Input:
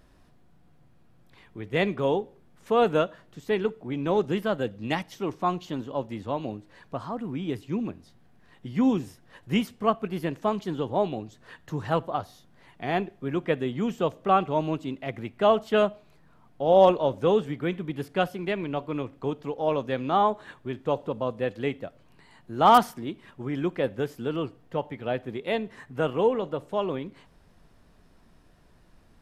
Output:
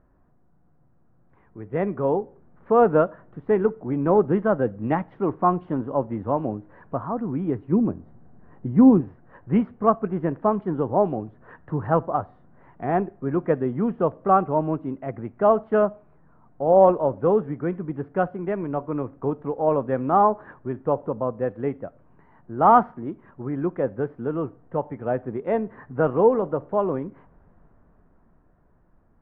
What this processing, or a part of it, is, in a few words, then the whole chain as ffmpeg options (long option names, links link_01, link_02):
action camera in a waterproof case: -filter_complex "[0:a]asettb=1/sr,asplit=3[link_01][link_02][link_03];[link_01]atrim=end=7.724[link_04];[link_02]atrim=start=7.72:end=9.01,asetpts=PTS-STARTPTS,afade=type=in:duration=0.004:curve=qsin,afade=type=out:start_time=1.286:duration=0.004:curve=qsin,tiltshelf=frequency=1100:gain=4.5[link_05];[link_03]atrim=start=9.006[link_06];[link_04][link_05]acrossfade=duration=0.004:curve1=hsin:curve2=qsin[link_07];[link_07][link_06]acrossfade=duration=0.004:curve1=qsin:curve2=hsin,lowpass=frequency=1500:width=0.5412,lowpass=frequency=1500:width=1.3066,dynaudnorm=framelen=330:gausssize=13:maxgain=11dB,volume=-3dB" -ar 24000 -c:a aac -b:a 64k